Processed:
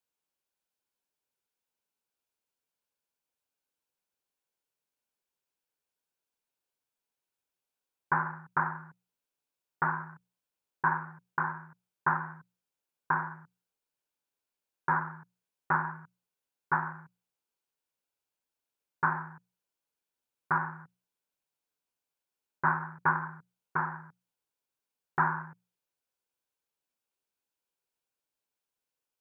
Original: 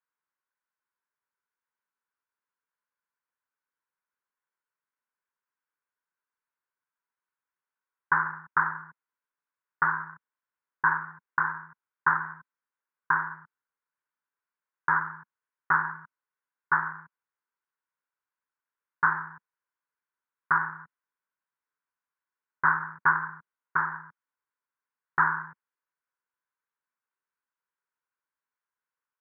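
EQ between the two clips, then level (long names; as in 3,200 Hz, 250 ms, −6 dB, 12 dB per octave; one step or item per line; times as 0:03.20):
flat-topped bell 1,400 Hz −12 dB 1.3 octaves
mains-hum notches 60/120/180 Hz
dynamic equaliser 1,000 Hz, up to +4 dB, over −45 dBFS, Q 3.3
+5.0 dB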